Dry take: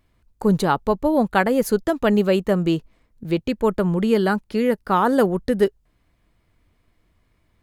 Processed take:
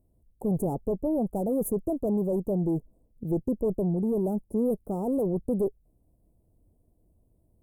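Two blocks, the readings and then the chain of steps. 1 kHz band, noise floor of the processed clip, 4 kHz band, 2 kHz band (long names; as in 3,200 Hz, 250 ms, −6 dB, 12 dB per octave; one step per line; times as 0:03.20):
−17.0 dB, −68 dBFS, below −40 dB, below −40 dB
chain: tube saturation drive 22 dB, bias 0.4
speech leveller 0.5 s
inverse Chebyshev band-stop filter 1,800–3,900 Hz, stop band 70 dB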